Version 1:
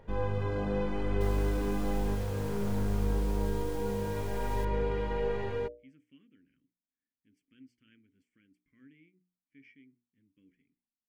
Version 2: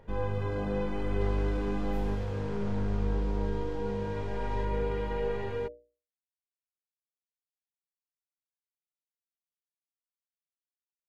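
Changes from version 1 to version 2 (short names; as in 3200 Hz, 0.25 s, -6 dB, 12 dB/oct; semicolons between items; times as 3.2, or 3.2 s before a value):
speech: muted; second sound: add Gaussian blur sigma 1.7 samples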